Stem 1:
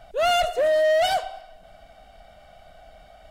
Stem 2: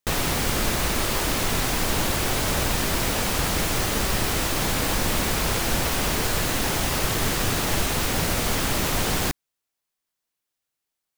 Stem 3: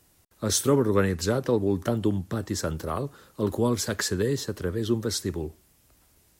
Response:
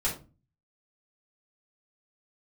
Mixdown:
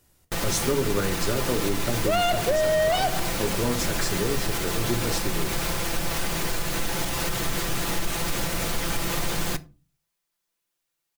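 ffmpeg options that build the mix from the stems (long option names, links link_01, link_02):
-filter_complex "[0:a]adelay=1900,volume=2dB[link_01];[1:a]aecho=1:1:5.9:0.56,alimiter=limit=-19dB:level=0:latency=1:release=187,adelay=250,volume=1dB,asplit=2[link_02][link_03];[link_03]volume=-19.5dB[link_04];[2:a]volume=-4dB,asplit=2[link_05][link_06];[link_06]volume=-10.5dB[link_07];[3:a]atrim=start_sample=2205[link_08];[link_04][link_07]amix=inputs=2:normalize=0[link_09];[link_09][link_08]afir=irnorm=-1:irlink=0[link_10];[link_01][link_02][link_05][link_10]amix=inputs=4:normalize=0,acompressor=threshold=-19dB:ratio=6"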